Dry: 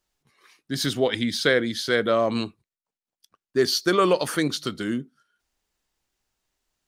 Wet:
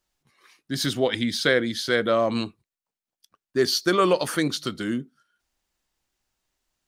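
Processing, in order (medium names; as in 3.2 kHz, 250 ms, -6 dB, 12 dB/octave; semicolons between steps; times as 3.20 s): band-stop 430 Hz, Q 14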